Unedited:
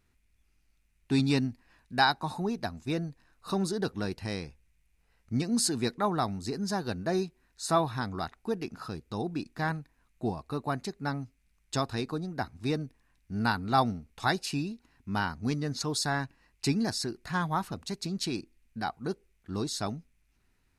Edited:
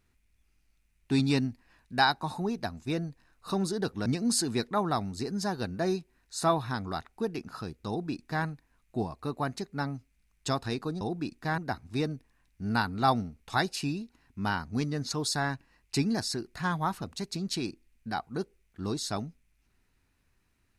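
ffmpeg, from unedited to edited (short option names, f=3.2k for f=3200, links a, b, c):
-filter_complex "[0:a]asplit=4[a][b][c][d];[a]atrim=end=4.062[e];[b]atrim=start=5.328:end=12.282[f];[c]atrim=start=9.148:end=9.722[g];[d]atrim=start=12.278[h];[e][f]acrossfade=d=0.004:c1=hsin:c2=hsin[i];[i][g]acrossfade=d=0.004:c1=hsin:c2=hsin[j];[j][h]acrossfade=d=0.004:c1=hsin:c2=hsin"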